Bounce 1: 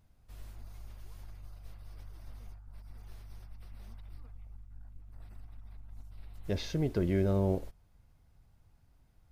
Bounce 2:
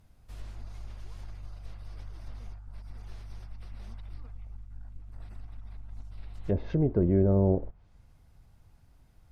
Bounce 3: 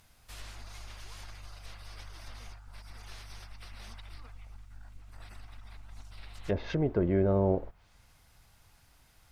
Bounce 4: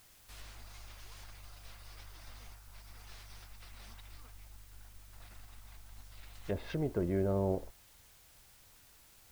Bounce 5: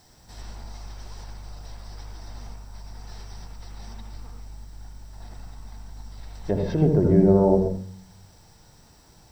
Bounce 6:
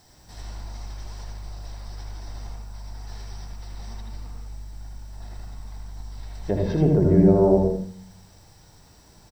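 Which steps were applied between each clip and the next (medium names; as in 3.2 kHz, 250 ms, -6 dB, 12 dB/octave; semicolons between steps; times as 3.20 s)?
low-pass that closes with the level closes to 790 Hz, closed at -30.5 dBFS; trim +5.5 dB
tilt shelf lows -8.5 dB, about 730 Hz; trim +3 dB
added noise white -57 dBFS; trim -5.5 dB
reverberation RT60 0.45 s, pre-delay 75 ms, DRR 3 dB
delay 79 ms -5 dB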